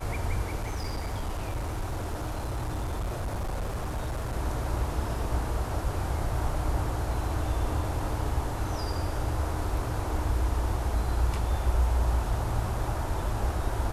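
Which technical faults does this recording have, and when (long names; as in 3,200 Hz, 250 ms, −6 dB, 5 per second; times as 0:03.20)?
0:00.60–0:04.36: clipping −27.5 dBFS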